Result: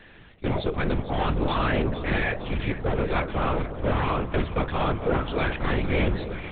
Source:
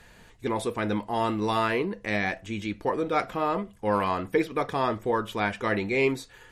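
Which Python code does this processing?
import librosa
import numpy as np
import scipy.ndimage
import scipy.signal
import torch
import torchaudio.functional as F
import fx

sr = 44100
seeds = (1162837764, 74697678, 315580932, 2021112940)

y = scipy.signal.sosfilt(scipy.signal.butter(2, 72.0, 'highpass', fs=sr, output='sos'), x)
y = fx.peak_eq(y, sr, hz=860.0, db=-7.0, octaves=0.52)
y = np.clip(10.0 ** (26.0 / 20.0) * y, -1.0, 1.0) / 10.0 ** (26.0 / 20.0)
y = fx.echo_alternate(y, sr, ms=228, hz=920.0, feedback_pct=79, wet_db=-10)
y = fx.lpc_vocoder(y, sr, seeds[0], excitation='whisper', order=8)
y = y * 10.0 ** (5.5 / 20.0)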